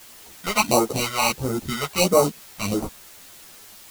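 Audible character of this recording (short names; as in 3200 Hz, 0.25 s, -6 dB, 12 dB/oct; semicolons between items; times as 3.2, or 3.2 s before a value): aliases and images of a low sample rate 1700 Hz, jitter 0%; phasing stages 2, 1.5 Hz, lowest notch 260–2800 Hz; a quantiser's noise floor 8-bit, dither triangular; a shimmering, thickened sound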